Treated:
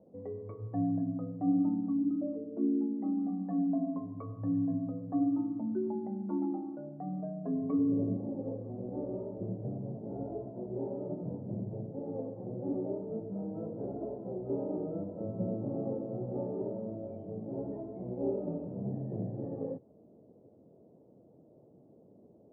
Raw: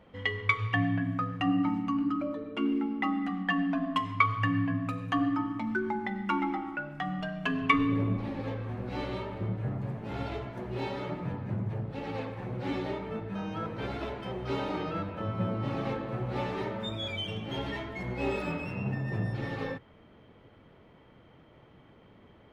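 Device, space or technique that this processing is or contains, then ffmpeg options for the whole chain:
under water: -filter_complex "[0:a]lowpass=f=540:w=0.5412,lowpass=f=540:w=1.3066,equalizer=f=670:t=o:w=0.47:g=6,asplit=3[s0][s1][s2];[s0]afade=t=out:st=1.92:d=0.02[s3];[s1]adynamicequalizer=threshold=0.00316:dfrequency=1000:dqfactor=1:tfrequency=1000:tqfactor=1:attack=5:release=100:ratio=0.375:range=3:mode=cutabove:tftype=bell,afade=t=in:st=1.92:d=0.02,afade=t=out:st=3.16:d=0.02[s4];[s2]afade=t=in:st=3.16:d=0.02[s5];[s3][s4][s5]amix=inputs=3:normalize=0,highpass=170"

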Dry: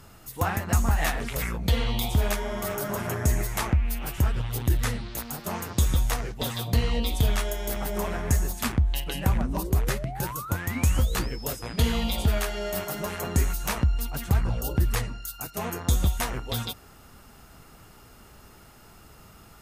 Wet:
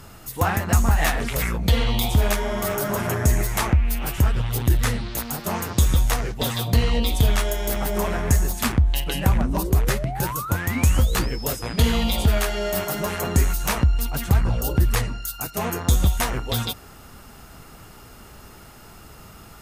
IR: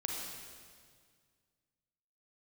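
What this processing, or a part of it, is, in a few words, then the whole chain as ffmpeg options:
parallel distortion: -filter_complex "[0:a]asplit=2[s0][s1];[s1]asoftclip=type=hard:threshold=0.0299,volume=0.316[s2];[s0][s2]amix=inputs=2:normalize=0,volume=1.58"

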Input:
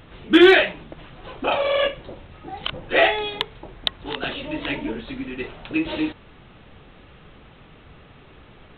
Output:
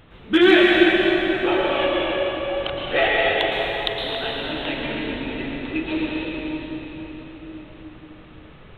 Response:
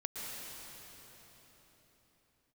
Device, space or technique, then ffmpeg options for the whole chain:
cathedral: -filter_complex "[1:a]atrim=start_sample=2205[s0];[0:a][s0]afir=irnorm=-1:irlink=0"

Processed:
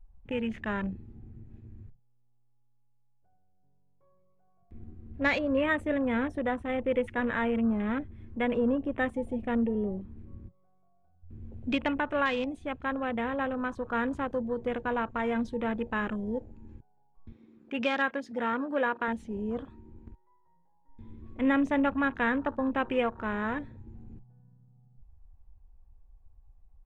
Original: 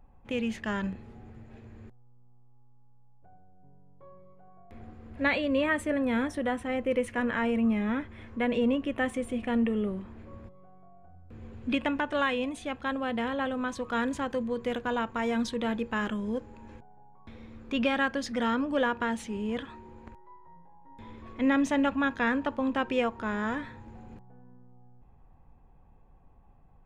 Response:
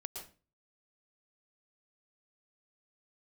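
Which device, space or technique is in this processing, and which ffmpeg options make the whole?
low shelf boost with a cut just above: -filter_complex "[0:a]lowshelf=f=80:g=4.5,equalizer=f=220:t=o:w=0.58:g=-2,asettb=1/sr,asplit=3[s0][s1][s2];[s0]atrim=end=17.324[s3];[s1]atrim=start=17.32:end=19.08,asetpts=PTS-STARTPTS,afade=t=in:d=0.004:c=qsin,afade=t=out:st=1.756:d=0.004:c=qsin,highpass=f=290:p=1[s4];[s2]atrim=start=19.076[s5];[s3][s4]acrossfade=d=0.004:c1=hsin:c2=qsin[s6];[s6][s5]acrossfade=d=0.004:c1=qsin:c2=hsin,afwtdn=0.0112"

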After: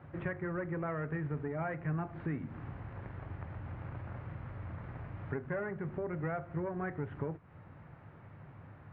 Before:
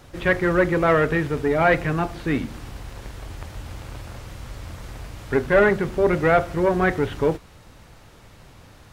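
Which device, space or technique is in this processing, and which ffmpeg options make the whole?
bass amplifier: -af "acompressor=threshold=0.0282:ratio=4,highpass=85,equalizer=f=99:t=q:w=4:g=7,equalizer=f=150:t=q:w=4:g=8,equalizer=f=470:t=q:w=4:g=-3,lowpass=f=2000:w=0.5412,lowpass=f=2000:w=1.3066,volume=0.501"

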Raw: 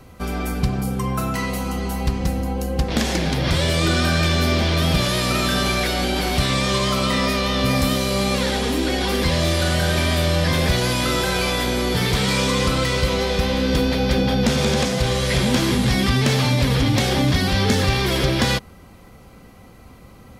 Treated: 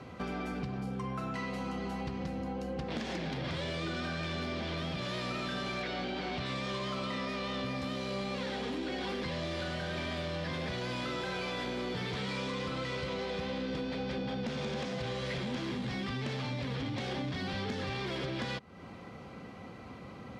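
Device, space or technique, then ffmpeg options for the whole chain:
AM radio: -filter_complex "[0:a]highpass=120,lowpass=4000,acompressor=threshold=0.02:ratio=5,asoftclip=type=tanh:threshold=0.0422,asettb=1/sr,asplit=3[s0][s1][s2];[s0]atrim=end=5.824[s3];[s1]atrim=start=5.82:end=6.46,asetpts=PTS-STARTPTS,afade=t=in:d=0.004:c=qsin,afade=t=out:st=0.636:d=0.004:c=qsin,lowpass=5600[s4];[s2]atrim=start=6.456[s5];[s3][s4]acrossfade=d=0.004:c1=hsin:c2=qsin[s6];[s6][s5]acrossfade=d=0.004:c1=qsin:c2=hsin"

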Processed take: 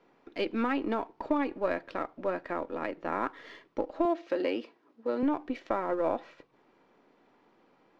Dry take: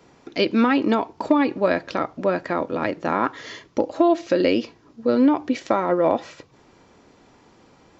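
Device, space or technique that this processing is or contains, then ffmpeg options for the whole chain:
crystal radio: -filter_complex "[0:a]highpass=220,lowpass=2900,aeval=exprs='if(lt(val(0),0),0.708*val(0),val(0))':c=same,asettb=1/sr,asplit=3[s0][s1][s2];[s0]atrim=end=4.054[s3];[s1]atrim=start=4.05:end=5.23,asetpts=PTS-STARTPTS,afade=t=in:d=0.004:c=qsin,afade=t=out:st=1.176:d=0.004:c=qsin,highpass=240[s4];[s2]atrim=start=5.226[s5];[s3][s4]acrossfade=d=0.004:c1=hsin:c2=qsin[s6];[s6][s5]acrossfade=d=0.004:c1=qsin:c2=hsin,volume=0.376"

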